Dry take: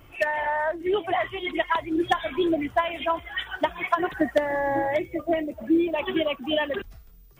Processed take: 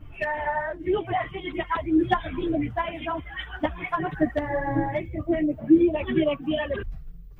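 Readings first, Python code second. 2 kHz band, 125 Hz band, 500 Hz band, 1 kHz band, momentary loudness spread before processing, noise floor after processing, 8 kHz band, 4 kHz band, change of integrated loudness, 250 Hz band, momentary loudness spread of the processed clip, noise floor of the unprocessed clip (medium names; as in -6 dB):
-3.5 dB, +10.5 dB, -1.5 dB, -2.0 dB, 4 LU, -43 dBFS, no reading, -6.0 dB, 0.0 dB, +3.0 dB, 10 LU, -50 dBFS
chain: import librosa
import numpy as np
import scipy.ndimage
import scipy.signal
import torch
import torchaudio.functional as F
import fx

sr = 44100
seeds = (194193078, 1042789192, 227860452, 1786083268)

y = fx.bass_treble(x, sr, bass_db=14, treble_db=-11)
y = fx.chorus_voices(y, sr, voices=4, hz=0.65, base_ms=10, depth_ms=3.6, mix_pct=60)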